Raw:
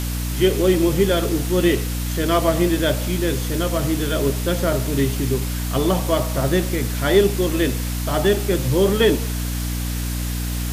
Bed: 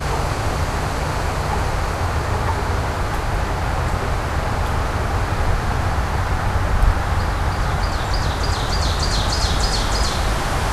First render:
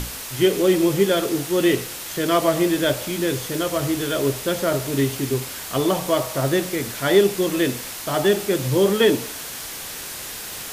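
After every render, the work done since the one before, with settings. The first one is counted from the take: hum notches 60/120/180/240/300 Hz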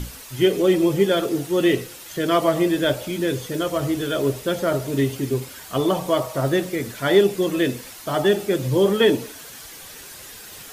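noise reduction 9 dB, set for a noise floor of -33 dBFS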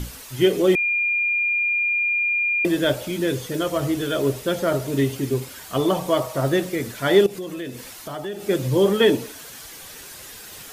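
0.75–2.65 s: bleep 2.41 kHz -18.5 dBFS; 7.26–8.49 s: compression 3:1, threshold -31 dBFS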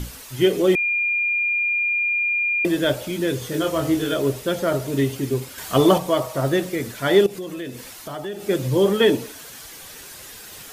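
3.39–4.14 s: doubling 25 ms -4 dB; 5.58–5.98 s: gain +5.5 dB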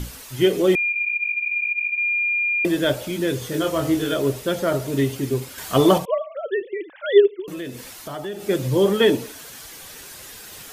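0.92–1.98 s: three-phase chorus; 6.05–7.48 s: formants replaced by sine waves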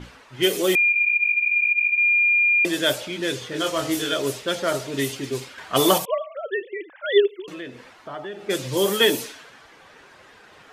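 level-controlled noise filter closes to 1.1 kHz, open at -14.5 dBFS; tilt EQ +3 dB/octave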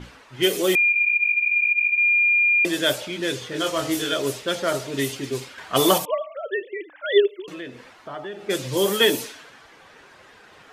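de-hum 298.7 Hz, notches 4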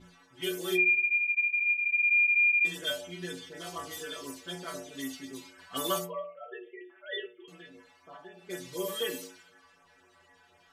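inharmonic resonator 86 Hz, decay 0.57 s, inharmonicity 0.008; LFO notch sine 4 Hz 280–4400 Hz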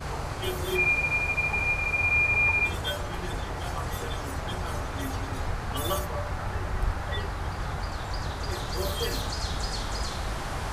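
add bed -12 dB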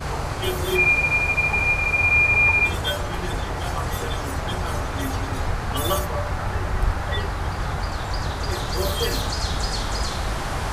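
trim +6 dB

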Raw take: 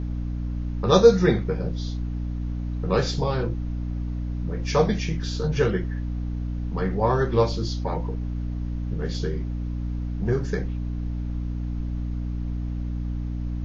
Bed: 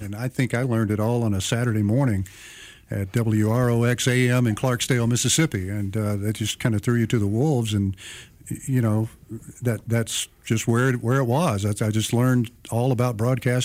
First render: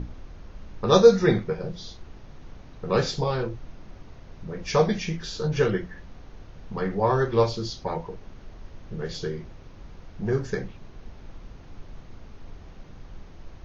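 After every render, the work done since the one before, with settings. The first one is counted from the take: hum notches 60/120/180/240/300 Hz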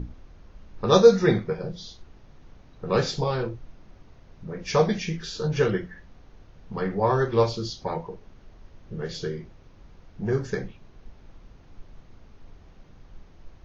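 noise print and reduce 6 dB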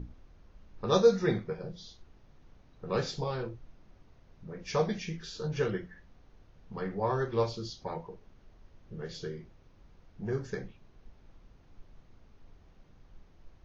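trim -8 dB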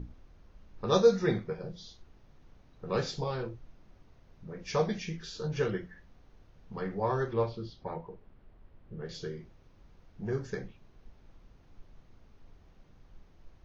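7.33–9.09 s: distance through air 280 m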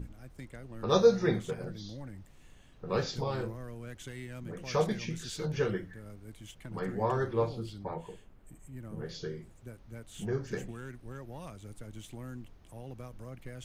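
add bed -24 dB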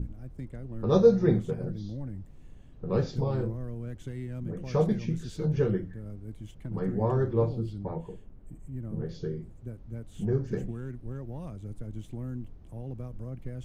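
tilt shelf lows +8.5 dB, about 670 Hz

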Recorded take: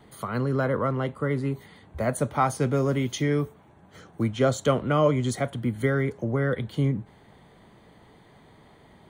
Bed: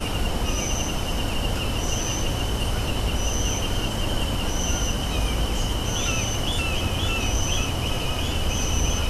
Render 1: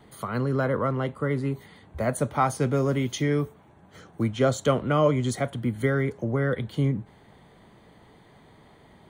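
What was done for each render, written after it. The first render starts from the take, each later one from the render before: no audible change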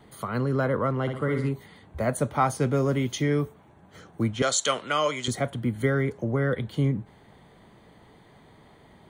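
1.01–1.49 s: flutter echo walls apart 10.5 m, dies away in 0.61 s; 4.42–5.28 s: frequency weighting ITU-R 468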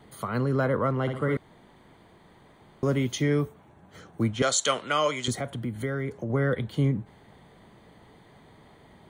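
1.37–2.83 s: room tone; 5.33–6.30 s: compression 2:1, threshold -30 dBFS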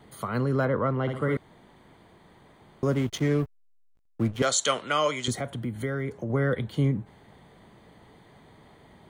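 0.65–1.09 s: distance through air 110 m; 2.94–4.46 s: hysteresis with a dead band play -31 dBFS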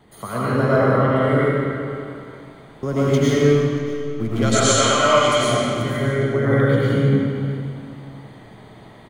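delay 632 ms -20 dB; algorithmic reverb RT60 2.4 s, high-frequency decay 0.85×, pre-delay 65 ms, DRR -9.5 dB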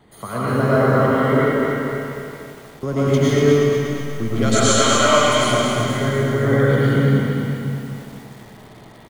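feedback delay 110 ms, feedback 35%, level -19 dB; bit-crushed delay 241 ms, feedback 55%, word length 7-bit, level -5 dB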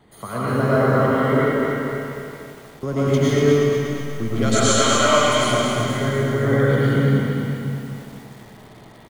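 trim -1.5 dB

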